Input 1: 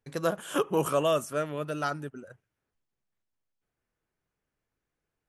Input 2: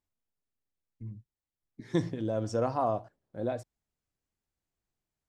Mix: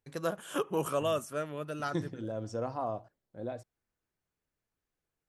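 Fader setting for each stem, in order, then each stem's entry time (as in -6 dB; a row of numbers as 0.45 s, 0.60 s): -5.0 dB, -6.0 dB; 0.00 s, 0.00 s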